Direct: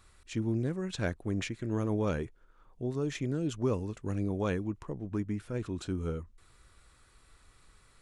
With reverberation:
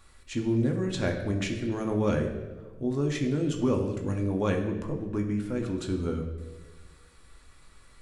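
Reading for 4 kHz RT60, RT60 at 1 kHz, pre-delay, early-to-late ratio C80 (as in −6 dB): 0.95 s, 1.0 s, 4 ms, 8.5 dB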